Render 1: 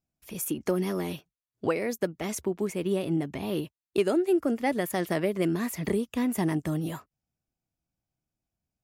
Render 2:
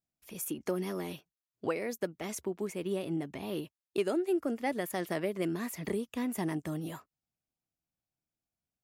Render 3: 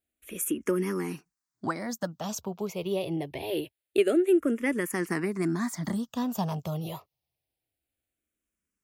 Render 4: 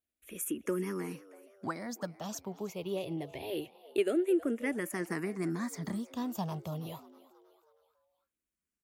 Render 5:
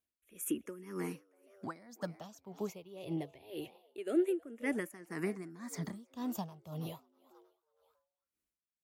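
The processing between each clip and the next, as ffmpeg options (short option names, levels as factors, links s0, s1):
-af "lowshelf=f=140:g=-7,volume=0.562"
-filter_complex "[0:a]asplit=2[s0][s1];[s1]afreqshift=-0.25[s2];[s0][s2]amix=inputs=2:normalize=1,volume=2.51"
-filter_complex "[0:a]asplit=5[s0][s1][s2][s3][s4];[s1]adelay=320,afreqshift=99,volume=0.106[s5];[s2]adelay=640,afreqshift=198,volume=0.0507[s6];[s3]adelay=960,afreqshift=297,volume=0.0243[s7];[s4]adelay=1280,afreqshift=396,volume=0.0117[s8];[s0][s5][s6][s7][s8]amix=inputs=5:normalize=0,volume=0.501"
-af "aeval=exprs='val(0)*pow(10,-18*(0.5-0.5*cos(2*PI*1.9*n/s))/20)':c=same,volume=1.12"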